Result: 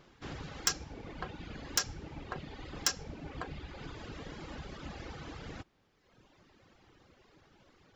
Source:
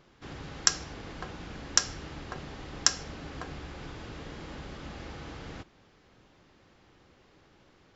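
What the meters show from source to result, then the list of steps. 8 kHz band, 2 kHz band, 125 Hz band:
can't be measured, −4.0 dB, −2.5 dB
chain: reverb reduction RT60 1.5 s
soft clipping −20.5 dBFS, distortion −3 dB
level +1 dB

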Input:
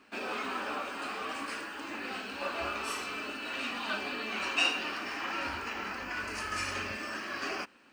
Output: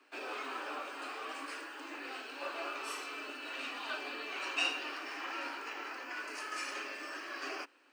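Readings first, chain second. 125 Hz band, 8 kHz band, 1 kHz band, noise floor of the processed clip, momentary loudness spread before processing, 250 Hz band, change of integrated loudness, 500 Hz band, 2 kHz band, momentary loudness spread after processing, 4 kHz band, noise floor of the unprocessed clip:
below −35 dB, −5.0 dB, −5.0 dB, −52 dBFS, 7 LU, −7.5 dB, −5.0 dB, −5.0 dB, −5.0 dB, 7 LU, −5.0 dB, −47 dBFS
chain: Butterworth high-pass 270 Hz 72 dB per octave
level −5 dB

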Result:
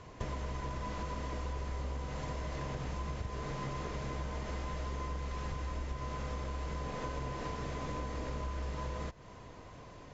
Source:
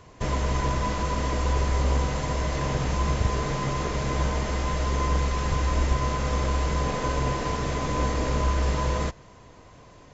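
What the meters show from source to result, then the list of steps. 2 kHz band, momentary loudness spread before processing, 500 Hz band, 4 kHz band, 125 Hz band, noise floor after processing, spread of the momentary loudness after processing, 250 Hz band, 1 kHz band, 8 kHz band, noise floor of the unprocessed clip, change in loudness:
−13.0 dB, 3 LU, −13.0 dB, −14.0 dB, −13.0 dB, −51 dBFS, 2 LU, −12.5 dB, −13.0 dB, can't be measured, −50 dBFS, −13.0 dB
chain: downward compressor 10 to 1, threshold −34 dBFS, peak gain reduction 16.5 dB
high-frequency loss of the air 52 metres
level −1 dB

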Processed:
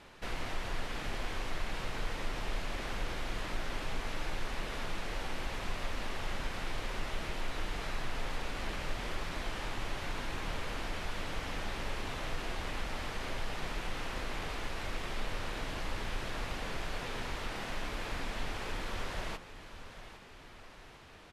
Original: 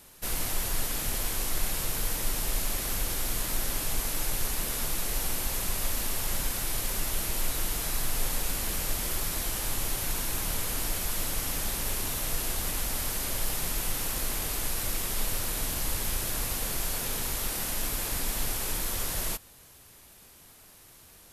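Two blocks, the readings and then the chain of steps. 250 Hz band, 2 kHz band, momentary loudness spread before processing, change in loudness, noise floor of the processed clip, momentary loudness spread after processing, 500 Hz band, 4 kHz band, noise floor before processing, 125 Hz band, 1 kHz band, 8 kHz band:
−3.5 dB, −1.5 dB, 0 LU, −9.5 dB, −52 dBFS, 1 LU, −2.0 dB, −7.0 dB, −54 dBFS, −5.0 dB, −1.0 dB, −20.5 dB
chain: low-shelf EQ 290 Hz −5 dB
downward compressor 1.5 to 1, threshold −45 dBFS, peak gain reduction 7.5 dB
low-pass filter 2,700 Hz 12 dB per octave
hum removal 57.42 Hz, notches 29
on a send: repeating echo 805 ms, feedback 48%, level −13.5 dB
on the sum: level +5.5 dB

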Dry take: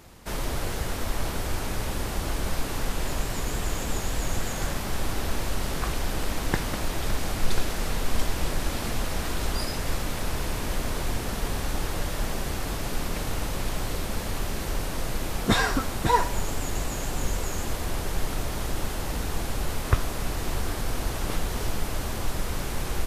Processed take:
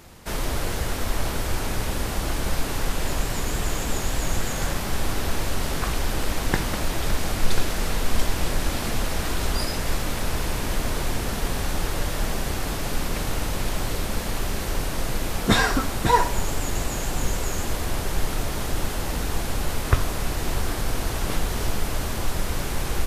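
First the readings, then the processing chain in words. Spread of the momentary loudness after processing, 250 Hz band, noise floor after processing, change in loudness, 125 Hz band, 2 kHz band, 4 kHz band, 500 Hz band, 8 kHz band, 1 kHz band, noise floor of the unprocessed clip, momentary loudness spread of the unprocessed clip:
4 LU, +3.0 dB, −29 dBFS, +3.0 dB, +3.0 dB, +3.5 dB, +3.5 dB, +3.0 dB, +3.5 dB, +3.0 dB, −32 dBFS, 4 LU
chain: hum removal 46.33 Hz, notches 28
level +3.5 dB

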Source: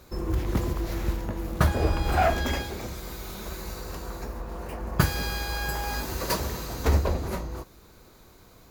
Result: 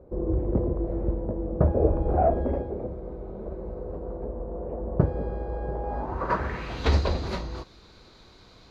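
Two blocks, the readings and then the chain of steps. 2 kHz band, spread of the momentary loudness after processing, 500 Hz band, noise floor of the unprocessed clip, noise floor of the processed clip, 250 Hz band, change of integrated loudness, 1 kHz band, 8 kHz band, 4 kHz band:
−7.5 dB, 13 LU, +4.0 dB, −53 dBFS, −53 dBFS, +2.0 dB, +0.5 dB, −1.0 dB, below −15 dB, −7.0 dB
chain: low-pass filter sweep 530 Hz → 4,200 Hz, 0:05.82–0:06.94

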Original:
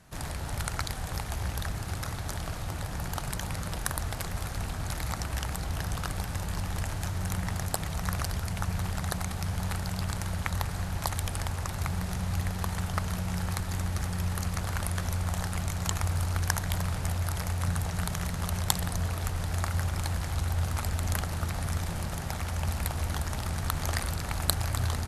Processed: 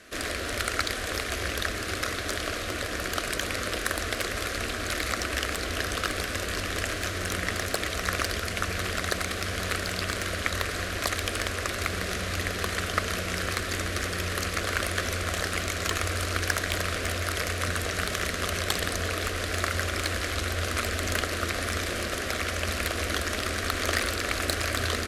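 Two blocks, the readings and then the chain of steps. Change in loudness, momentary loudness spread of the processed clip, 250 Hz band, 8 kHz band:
+3.5 dB, 2 LU, +1.5 dB, +4.0 dB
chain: phaser with its sweep stopped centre 360 Hz, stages 4
mid-hump overdrive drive 24 dB, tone 2,000 Hz, clips at −4 dBFS

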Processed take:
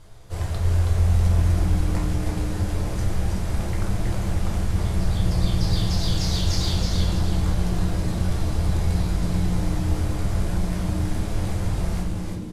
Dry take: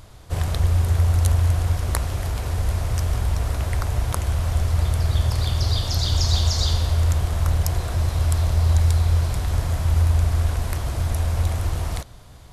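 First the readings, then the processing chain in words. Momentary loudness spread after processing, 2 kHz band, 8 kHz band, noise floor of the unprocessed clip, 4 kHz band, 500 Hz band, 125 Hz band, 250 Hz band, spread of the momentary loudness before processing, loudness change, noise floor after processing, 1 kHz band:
6 LU, −2.0 dB, −3.5 dB, −43 dBFS, −3.0 dB, +0.5 dB, −3.0 dB, +9.0 dB, 7 LU, −2.5 dB, −29 dBFS, −2.5 dB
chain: variable-slope delta modulation 64 kbit/s
echo with shifted repeats 323 ms, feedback 38%, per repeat −130 Hz, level −3 dB
rectangular room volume 38 cubic metres, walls mixed, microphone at 0.69 metres
level −7.5 dB

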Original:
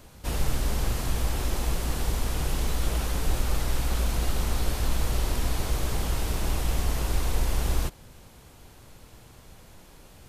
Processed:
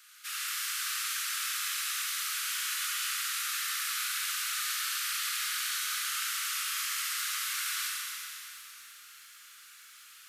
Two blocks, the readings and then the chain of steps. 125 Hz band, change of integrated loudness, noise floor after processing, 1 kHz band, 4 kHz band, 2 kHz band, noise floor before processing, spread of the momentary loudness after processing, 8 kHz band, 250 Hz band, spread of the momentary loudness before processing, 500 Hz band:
below −40 dB, −1.5 dB, −53 dBFS, −3.5 dB, +5.0 dB, +5.0 dB, −51 dBFS, 18 LU, +5.0 dB, below −40 dB, 1 LU, below −40 dB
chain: Butterworth high-pass 1,200 Hz 96 dB per octave
four-comb reverb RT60 3.1 s, combs from 31 ms, DRR −3 dB
feedback echo at a low word length 114 ms, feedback 35%, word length 9 bits, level −12.5 dB

